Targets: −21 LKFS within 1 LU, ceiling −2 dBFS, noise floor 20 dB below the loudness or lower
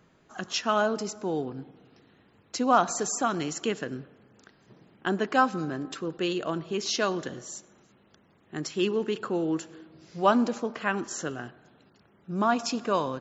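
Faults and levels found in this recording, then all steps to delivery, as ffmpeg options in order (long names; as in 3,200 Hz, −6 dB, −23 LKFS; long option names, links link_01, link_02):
integrated loudness −28.5 LKFS; sample peak −8.5 dBFS; target loudness −21.0 LKFS
→ -af "volume=7.5dB,alimiter=limit=-2dB:level=0:latency=1"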